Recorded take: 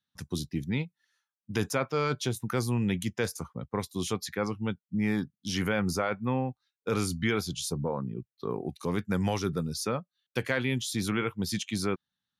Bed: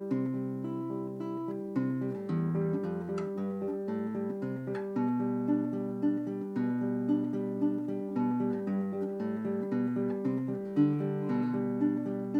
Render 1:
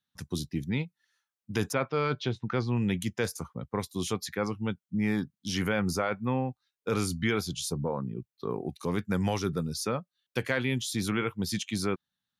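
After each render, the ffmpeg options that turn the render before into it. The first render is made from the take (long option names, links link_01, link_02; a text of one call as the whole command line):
ffmpeg -i in.wav -filter_complex "[0:a]asplit=3[link_01][link_02][link_03];[link_01]afade=type=out:start_time=1.72:duration=0.02[link_04];[link_02]lowpass=frequency=4300:width=0.5412,lowpass=frequency=4300:width=1.3066,afade=type=in:start_time=1.72:duration=0.02,afade=type=out:start_time=2.75:duration=0.02[link_05];[link_03]afade=type=in:start_time=2.75:duration=0.02[link_06];[link_04][link_05][link_06]amix=inputs=3:normalize=0" out.wav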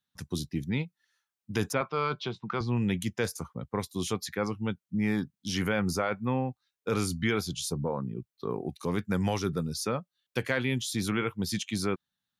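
ffmpeg -i in.wav -filter_complex "[0:a]asettb=1/sr,asplit=3[link_01][link_02][link_03];[link_01]atrim=end=1.814[link_04];[link_02]atrim=start=1.81:end=2.61,asetpts=PTS-STARTPTS,afade=type=in:duration=0.004:curve=qsin,afade=type=out:start_time=0.796:duration=0.004:curve=qsin,highpass=180,equalizer=frequency=180:width_type=q:width=4:gain=5,equalizer=frequency=270:width_type=q:width=4:gain=-8,equalizer=frequency=520:width_type=q:width=4:gain=-6,equalizer=frequency=1100:width_type=q:width=4:gain=7,equalizer=frequency=1800:width_type=q:width=4:gain=-6,equalizer=frequency=6500:width_type=q:width=4:gain=-5,lowpass=frequency=8000:width=0.5412,lowpass=frequency=8000:width=1.3066[link_05];[link_03]atrim=start=2.606[link_06];[link_04][link_05]acrossfade=duration=0.004:curve1=hsin:curve2=qsin[link_07];[link_07][link_06]acrossfade=duration=0.004:curve1=qsin:curve2=hsin" out.wav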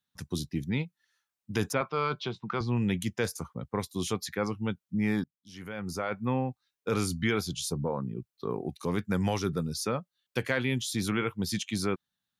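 ffmpeg -i in.wav -filter_complex "[0:a]asplit=2[link_01][link_02];[link_01]atrim=end=5.24,asetpts=PTS-STARTPTS,afade=type=out:start_time=5.236:duration=0.004:curve=hsin:silence=0.0668344[link_03];[link_02]atrim=start=5.24,asetpts=PTS-STARTPTS,afade=type=in:duration=0.99:curve=qua:silence=0.0668344[link_04];[link_03][link_04]concat=n=2:v=0:a=1" out.wav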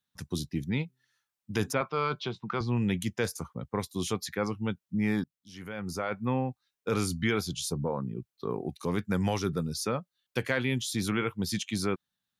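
ffmpeg -i in.wav -filter_complex "[0:a]asettb=1/sr,asplit=3[link_01][link_02][link_03];[link_01]atrim=end=0.844[link_04];[link_02]atrim=start=0.84:end=1.71,asetpts=PTS-STARTPTS,afade=type=in:duration=0.004:curve=qsin,afade=type=out:start_time=0.866:duration=0.004:curve=qsin,bandreject=frequency=128.1:width_type=h:width=4,bandreject=frequency=256.2:width_type=h:width=4,bandreject=frequency=384.3:width_type=h:width=4[link_05];[link_03]atrim=start=1.706[link_06];[link_04][link_05]acrossfade=duration=0.004:curve1=hsin:curve2=qsin[link_07];[link_07][link_06]acrossfade=duration=0.004:curve1=qsin:curve2=hsin" out.wav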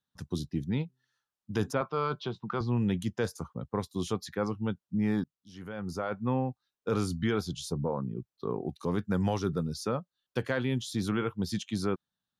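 ffmpeg -i in.wav -af "lowpass=frequency=3500:poles=1,equalizer=frequency=2200:width_type=o:width=0.55:gain=-8.5" out.wav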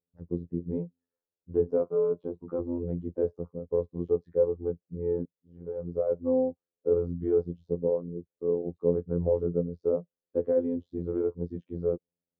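ffmpeg -i in.wav -af "afftfilt=real='hypot(re,im)*cos(PI*b)':imag='0':win_size=2048:overlap=0.75,lowpass=frequency=480:width_type=q:width=4.9" out.wav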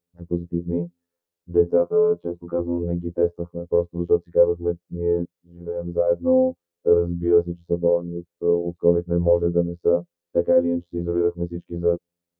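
ffmpeg -i in.wav -af "volume=7.5dB" out.wav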